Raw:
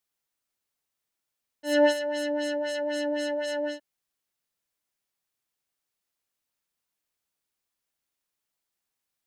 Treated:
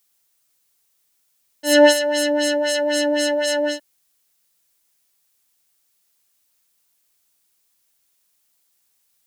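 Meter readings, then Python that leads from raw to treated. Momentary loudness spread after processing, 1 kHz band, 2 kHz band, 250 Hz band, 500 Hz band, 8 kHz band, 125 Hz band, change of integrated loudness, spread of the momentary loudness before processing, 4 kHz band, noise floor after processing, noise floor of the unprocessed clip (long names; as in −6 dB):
11 LU, +9.0 dB, +10.5 dB, +8.5 dB, +8.5 dB, +17.0 dB, can't be measured, +9.0 dB, 11 LU, +13.5 dB, −67 dBFS, −85 dBFS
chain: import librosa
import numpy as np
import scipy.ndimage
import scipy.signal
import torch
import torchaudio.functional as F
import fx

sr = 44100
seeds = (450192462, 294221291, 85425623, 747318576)

y = fx.high_shelf(x, sr, hz=3900.0, db=11.0)
y = y * 10.0 ** (8.5 / 20.0)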